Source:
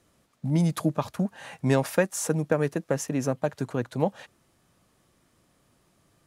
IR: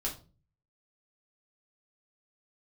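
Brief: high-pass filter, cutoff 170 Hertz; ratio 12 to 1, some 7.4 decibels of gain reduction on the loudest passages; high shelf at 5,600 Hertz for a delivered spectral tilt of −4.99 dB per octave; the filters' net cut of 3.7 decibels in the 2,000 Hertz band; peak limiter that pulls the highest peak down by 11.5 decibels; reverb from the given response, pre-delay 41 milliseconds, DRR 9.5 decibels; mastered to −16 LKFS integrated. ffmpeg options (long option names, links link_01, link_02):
-filter_complex "[0:a]highpass=170,equalizer=frequency=2000:width_type=o:gain=-5.5,highshelf=frequency=5600:gain=5.5,acompressor=threshold=-25dB:ratio=12,alimiter=level_in=1dB:limit=-24dB:level=0:latency=1,volume=-1dB,asplit=2[link_01][link_02];[1:a]atrim=start_sample=2205,adelay=41[link_03];[link_02][link_03]afir=irnorm=-1:irlink=0,volume=-12dB[link_04];[link_01][link_04]amix=inputs=2:normalize=0,volume=19.5dB"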